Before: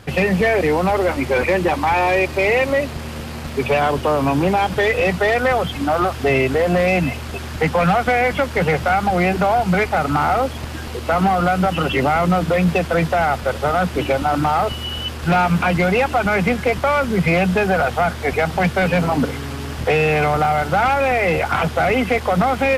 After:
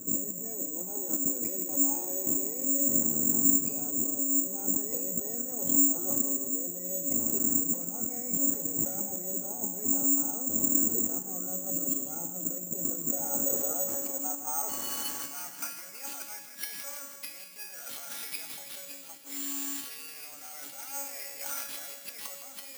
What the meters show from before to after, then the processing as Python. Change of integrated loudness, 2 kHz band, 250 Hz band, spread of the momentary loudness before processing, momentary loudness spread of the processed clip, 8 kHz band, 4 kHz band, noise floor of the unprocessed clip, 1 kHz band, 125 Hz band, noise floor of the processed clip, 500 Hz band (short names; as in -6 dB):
-10.0 dB, -29.0 dB, -14.5 dB, 5 LU, 16 LU, +11.5 dB, -17.0 dB, -29 dBFS, -28.5 dB, -27.0 dB, -46 dBFS, -24.5 dB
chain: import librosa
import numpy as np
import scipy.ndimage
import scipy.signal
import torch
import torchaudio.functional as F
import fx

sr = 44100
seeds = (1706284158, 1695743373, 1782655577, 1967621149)

y = fx.peak_eq(x, sr, hz=260.0, db=14.0, octaves=1.3)
y = fx.over_compress(y, sr, threshold_db=-21.0, ratio=-1.0)
y = fx.comb_fb(y, sr, f0_hz=280.0, decay_s=0.73, harmonics='all', damping=0.0, mix_pct=90)
y = fx.filter_sweep_bandpass(y, sr, from_hz=310.0, to_hz=3400.0, start_s=12.82, end_s=16.46, q=1.1)
y = fx.echo_feedback(y, sr, ms=163, feedback_pct=59, wet_db=-10.0)
y = (np.kron(y[::6], np.eye(6)[0]) * 6)[:len(y)]